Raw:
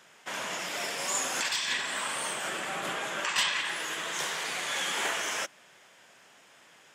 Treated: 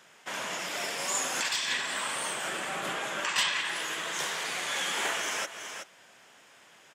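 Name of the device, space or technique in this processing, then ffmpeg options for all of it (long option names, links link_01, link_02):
ducked delay: -filter_complex "[0:a]asplit=3[link_01][link_02][link_03];[link_02]adelay=374,volume=-8dB[link_04];[link_03]apad=whole_len=322692[link_05];[link_04][link_05]sidechaincompress=threshold=-40dB:ratio=3:attack=8.7:release=193[link_06];[link_01][link_06]amix=inputs=2:normalize=0"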